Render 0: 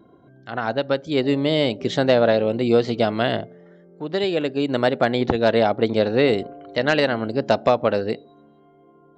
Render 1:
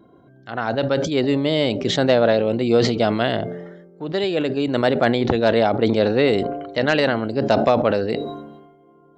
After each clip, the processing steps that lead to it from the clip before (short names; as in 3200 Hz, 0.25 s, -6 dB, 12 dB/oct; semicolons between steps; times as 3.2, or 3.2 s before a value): sustainer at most 49 dB/s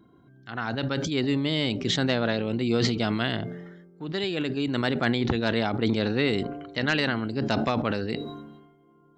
bell 580 Hz -11.5 dB 1.1 oct; gain -2.5 dB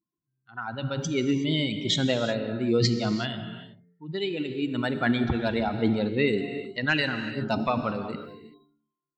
per-bin expansion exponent 2; non-linear reverb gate 0.4 s flat, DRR 8 dB; gain +4 dB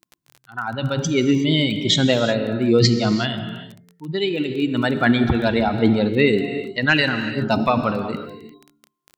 crackle 14/s -37 dBFS; gain +7.5 dB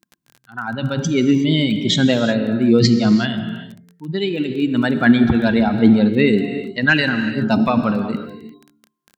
small resonant body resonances 210/1600 Hz, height 8 dB, ringing for 30 ms; gain -1 dB